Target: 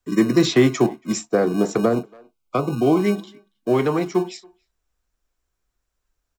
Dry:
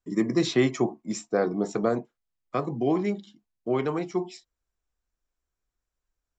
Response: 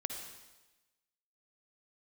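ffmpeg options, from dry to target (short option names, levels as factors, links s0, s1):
-filter_complex "[0:a]acrossover=split=200|1000|1300[s0][s1][s2][s3];[s0]acrusher=samples=33:mix=1:aa=0.000001[s4];[s4][s1][s2][s3]amix=inputs=4:normalize=0,asettb=1/sr,asplit=3[s5][s6][s7];[s5]atrim=end=1.934[s8];[s6]atrim=start=1.93:end=3,asetpts=PTS-STARTPTS,afade=t=in:d=0.004:c=qsin,afade=t=out:st=1.066:d=0.004:c=qsin,asuperstop=centerf=1800:order=20:qfactor=3.5[s9];[s7]atrim=start=2.996[s10];[s8][s9]acrossfade=d=0.004:c1=hsin:c2=qsin[s11];[s11][s10]acrossfade=d=0.004:c1=qsin:c2=hsin,asplit=2[s12][s13];[s13]adelay=280,highpass=300,lowpass=3400,asoftclip=type=hard:threshold=0.106,volume=0.0447[s14];[s12][s14]amix=inputs=2:normalize=0,acrossover=split=410[s15][s16];[s16]acompressor=threshold=0.0447:ratio=6[s17];[s15][s17]amix=inputs=2:normalize=0,volume=2.51"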